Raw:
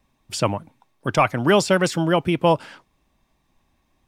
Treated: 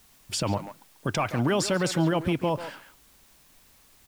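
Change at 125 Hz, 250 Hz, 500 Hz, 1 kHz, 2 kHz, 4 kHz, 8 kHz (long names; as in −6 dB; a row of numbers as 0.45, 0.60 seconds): −3.5, −4.5, −8.0, −8.5, −8.0, −4.5, −2.0 decibels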